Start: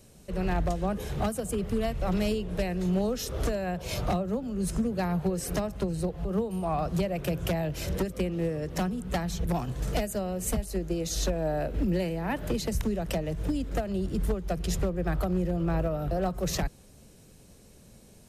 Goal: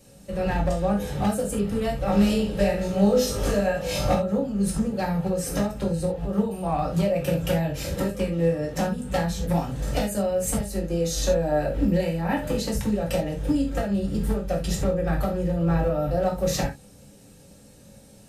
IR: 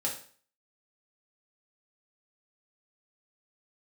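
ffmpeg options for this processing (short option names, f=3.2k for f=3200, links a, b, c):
-filter_complex "[0:a]asettb=1/sr,asplit=3[a][b][c];[a]atrim=end=2.064[d];[b]atrim=start=2.06:end=4.14,asetpts=PTS-STARTPTS,afade=t=in:d=0.004:c=qsin,afade=t=out:st=2.076:d=0.004:c=qsin,aecho=1:1:20|52|103.2|185.1|316.2:0.631|0.398|0.251|0.158|0.1,atrim=end_sample=91728[e];[c]atrim=start=4.136[f];[d][e]acrossfade=d=0.004:c1=hsin:c2=qsin[g];[g][f]acrossfade=d=0.004:c1=qsin:c2=hsin[h];[1:a]atrim=start_sample=2205,afade=t=out:st=0.14:d=0.01,atrim=end_sample=6615[i];[h][i]afir=irnorm=-1:irlink=0"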